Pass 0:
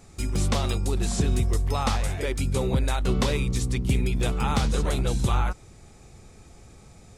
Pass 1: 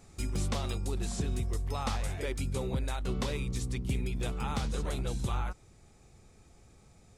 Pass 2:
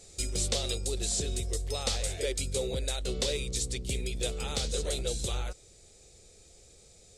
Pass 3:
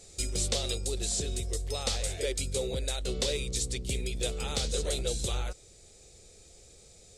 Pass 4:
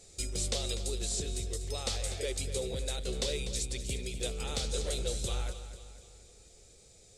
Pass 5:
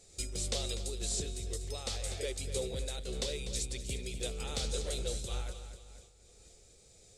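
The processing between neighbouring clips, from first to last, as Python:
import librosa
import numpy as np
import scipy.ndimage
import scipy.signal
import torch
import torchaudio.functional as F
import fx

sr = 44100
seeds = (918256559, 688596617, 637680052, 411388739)

y1 = fx.rider(x, sr, range_db=10, speed_s=0.5)
y1 = F.gain(torch.from_numpy(y1), -8.5).numpy()
y2 = fx.graphic_eq(y1, sr, hz=(125, 250, 500, 1000, 4000, 8000), db=(-5, -7, 11, -12, 9, 11))
y3 = fx.rider(y2, sr, range_db=10, speed_s=2.0)
y4 = fx.echo_feedback(y3, sr, ms=246, feedback_pct=48, wet_db=-12.0)
y4 = F.gain(torch.from_numpy(y4), -3.5).numpy()
y5 = fx.am_noise(y4, sr, seeds[0], hz=5.7, depth_pct=65)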